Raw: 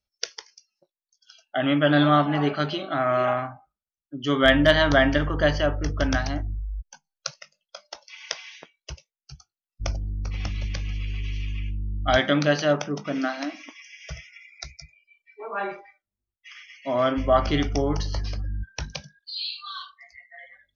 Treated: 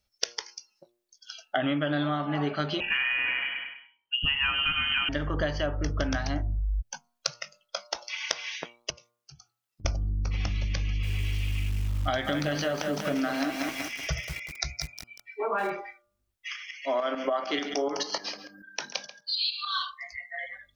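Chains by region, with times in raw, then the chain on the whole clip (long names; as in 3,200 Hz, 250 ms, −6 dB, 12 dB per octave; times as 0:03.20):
0:02.80–0:05.09: repeating echo 100 ms, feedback 39%, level −8.5 dB + voice inversion scrambler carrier 3,100 Hz
0:08.90–0:09.85: high-pass filter 130 Hz + downward compressor 10 to 1, threshold −55 dBFS
0:10.84–0:15.70: downward compressor 1.5 to 1, threshold −27 dBFS + feedback echo at a low word length 189 ms, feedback 55%, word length 7 bits, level −7 dB
0:16.56–0:19.73: Bessel high-pass filter 410 Hz, order 6 + single-tap delay 137 ms −14.5 dB + shaped tremolo saw up 6.8 Hz, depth 65%
whole clip: downward compressor 12 to 1, threshold −33 dBFS; hum removal 118.7 Hz, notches 12; level +8.5 dB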